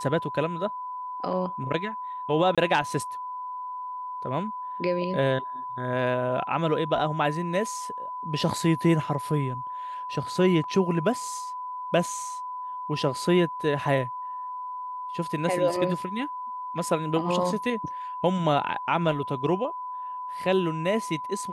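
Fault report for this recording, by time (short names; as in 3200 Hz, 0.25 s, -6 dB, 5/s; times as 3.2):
tone 1000 Hz -32 dBFS
2.55–2.58 gap 26 ms
10.64 gap 2 ms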